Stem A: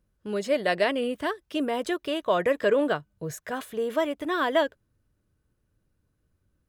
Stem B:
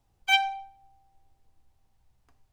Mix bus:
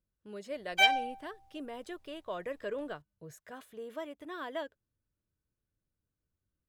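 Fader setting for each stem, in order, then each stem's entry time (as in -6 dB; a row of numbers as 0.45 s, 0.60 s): -15.0 dB, -1.5 dB; 0.00 s, 0.50 s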